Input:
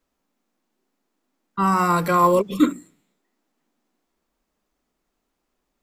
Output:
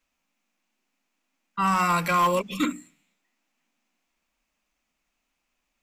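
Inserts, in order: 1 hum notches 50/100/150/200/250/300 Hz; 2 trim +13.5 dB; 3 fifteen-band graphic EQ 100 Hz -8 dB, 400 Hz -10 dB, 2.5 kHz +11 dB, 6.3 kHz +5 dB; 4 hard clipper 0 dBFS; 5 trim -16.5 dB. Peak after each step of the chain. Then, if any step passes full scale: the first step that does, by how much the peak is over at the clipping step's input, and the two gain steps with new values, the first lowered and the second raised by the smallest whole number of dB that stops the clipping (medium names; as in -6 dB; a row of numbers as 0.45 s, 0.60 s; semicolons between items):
-5.5 dBFS, +8.0 dBFS, +7.0 dBFS, 0.0 dBFS, -16.5 dBFS; step 2, 7.0 dB; step 2 +6.5 dB, step 5 -9.5 dB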